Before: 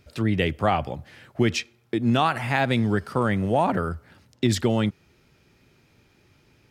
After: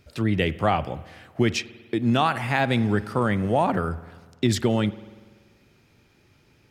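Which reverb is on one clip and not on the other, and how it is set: spring tank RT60 1.5 s, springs 48 ms, chirp 65 ms, DRR 16.5 dB

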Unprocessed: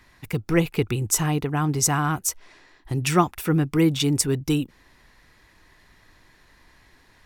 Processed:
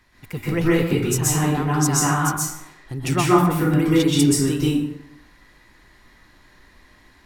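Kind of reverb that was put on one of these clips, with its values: plate-style reverb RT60 0.8 s, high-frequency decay 0.6×, pre-delay 115 ms, DRR -7 dB; trim -4.5 dB

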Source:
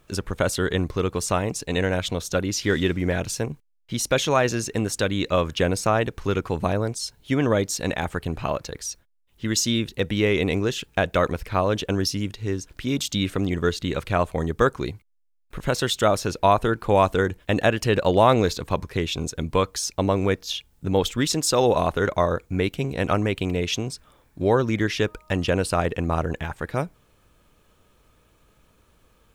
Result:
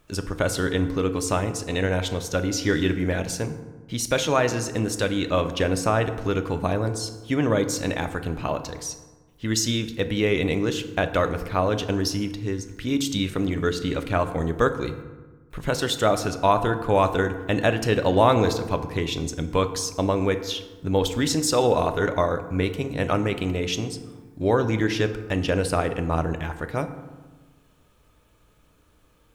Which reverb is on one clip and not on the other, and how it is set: FDN reverb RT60 1.3 s, low-frequency decay 1.3×, high-frequency decay 0.5×, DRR 8 dB; trim -1.5 dB

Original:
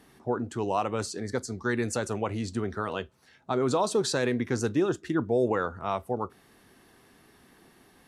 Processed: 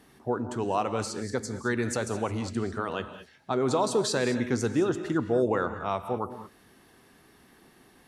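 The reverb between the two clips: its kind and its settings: gated-style reverb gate 240 ms rising, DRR 10 dB

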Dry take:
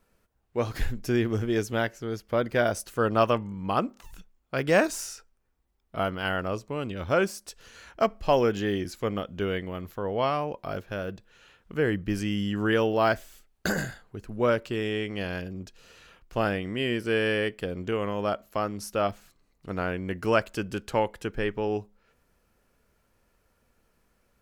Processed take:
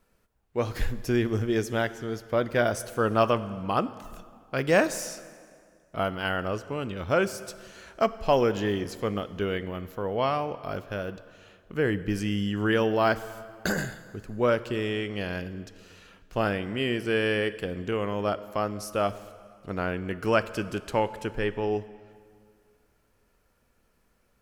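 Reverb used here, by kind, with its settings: plate-style reverb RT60 2.1 s, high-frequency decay 0.8×, DRR 14 dB

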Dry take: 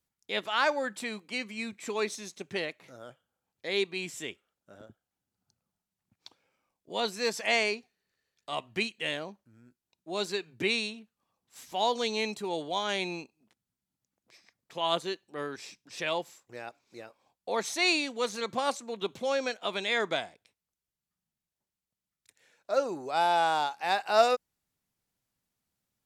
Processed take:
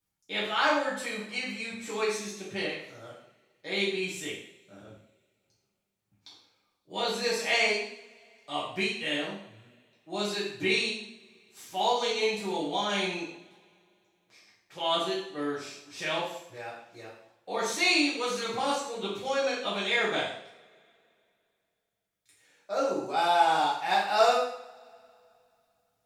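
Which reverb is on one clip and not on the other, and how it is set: two-slope reverb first 0.63 s, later 2.7 s, from -26 dB, DRR -8 dB; trim -6.5 dB

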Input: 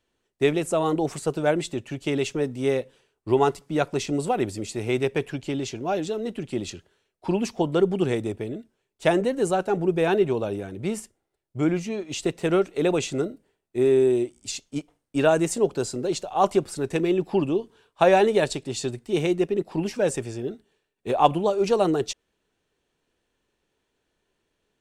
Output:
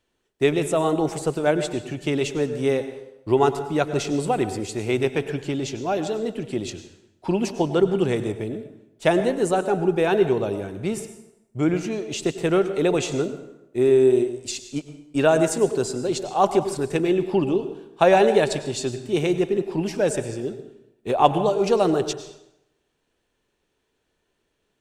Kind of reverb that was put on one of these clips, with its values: plate-style reverb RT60 0.86 s, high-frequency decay 0.75×, pre-delay 85 ms, DRR 10.5 dB; trim +1.5 dB

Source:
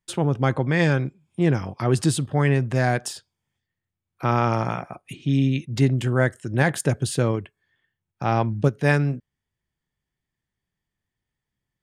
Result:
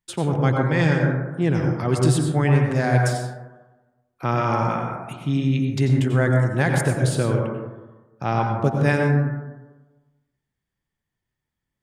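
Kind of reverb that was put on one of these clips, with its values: plate-style reverb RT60 1.2 s, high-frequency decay 0.25×, pre-delay 80 ms, DRR 1 dB; trim -1.5 dB

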